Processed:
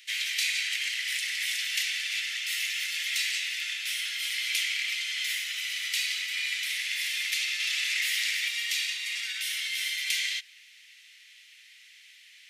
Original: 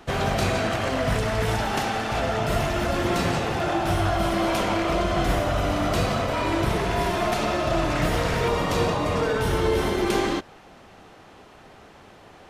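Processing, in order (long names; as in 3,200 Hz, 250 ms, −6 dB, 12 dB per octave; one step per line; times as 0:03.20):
Chebyshev high-pass filter 2,000 Hz, order 5
0:07.60–0:08.30: envelope flattener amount 70%
level +5 dB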